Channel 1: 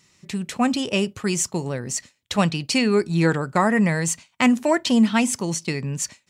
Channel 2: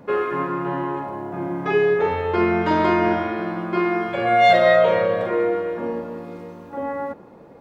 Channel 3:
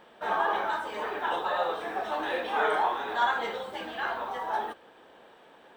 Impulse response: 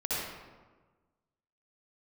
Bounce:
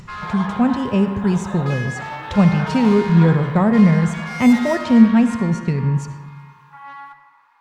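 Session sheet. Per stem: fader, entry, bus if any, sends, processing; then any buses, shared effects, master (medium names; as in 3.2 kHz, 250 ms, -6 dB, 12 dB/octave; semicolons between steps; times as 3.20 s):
-3.5 dB, 0.00 s, send -16.5 dB, tilt EQ -4.5 dB/octave; upward compressor, threshold -26 dBFS; peaking EQ 310 Hz -11 dB 0.23 oct
+1.0 dB, 0.00 s, send -16.5 dB, elliptic high-pass 940 Hz, stop band 40 dB; treble shelf 4.7 kHz -8 dB; valve stage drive 29 dB, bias 0.25
-5.5 dB, 0.00 s, no send, none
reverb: on, RT60 1.4 s, pre-delay 57 ms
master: none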